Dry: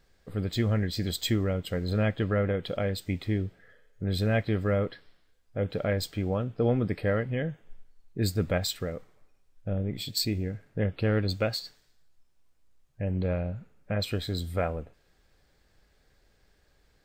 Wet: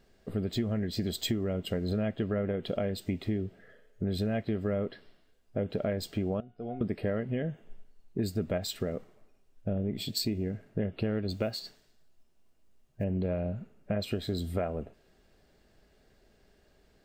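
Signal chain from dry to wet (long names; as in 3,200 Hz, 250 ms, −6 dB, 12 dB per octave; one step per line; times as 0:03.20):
0:06.40–0:06.81: tuned comb filter 720 Hz, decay 0.26 s, mix 90%
0:11.32–0:13.04: noise that follows the level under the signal 34 dB
hollow resonant body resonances 230/380/630/2,800 Hz, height 9 dB, ringing for 30 ms
downward compressor 5 to 1, threshold −27 dBFS, peak gain reduction 11 dB
level −1 dB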